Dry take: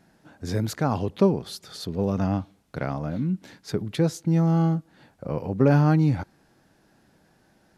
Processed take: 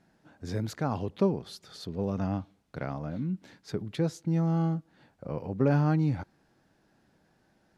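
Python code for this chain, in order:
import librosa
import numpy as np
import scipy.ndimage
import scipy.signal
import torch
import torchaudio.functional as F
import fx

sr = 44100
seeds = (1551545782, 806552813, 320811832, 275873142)

y = fx.high_shelf(x, sr, hz=10000.0, db=-9.5)
y = y * librosa.db_to_amplitude(-6.0)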